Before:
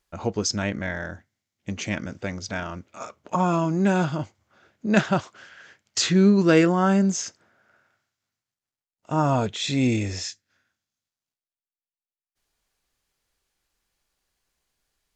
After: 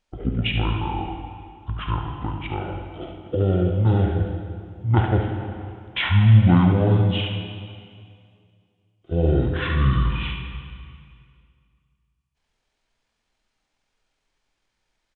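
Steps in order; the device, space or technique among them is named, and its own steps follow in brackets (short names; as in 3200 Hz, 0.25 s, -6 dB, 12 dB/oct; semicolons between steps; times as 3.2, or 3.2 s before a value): monster voice (pitch shift -10.5 st; formant shift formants -2.5 st; low shelf 120 Hz +4 dB; echo 72 ms -8 dB; reverb RT60 2.2 s, pre-delay 23 ms, DRR 4 dB)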